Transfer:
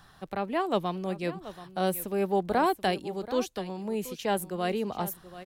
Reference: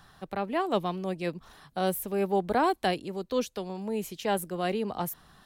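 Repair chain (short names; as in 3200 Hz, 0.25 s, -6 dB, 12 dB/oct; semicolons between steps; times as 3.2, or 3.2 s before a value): de-click; inverse comb 0.731 s -15 dB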